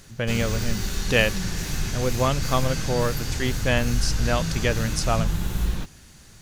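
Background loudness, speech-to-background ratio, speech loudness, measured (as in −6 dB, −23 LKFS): −28.5 LKFS, 2.5 dB, −26.0 LKFS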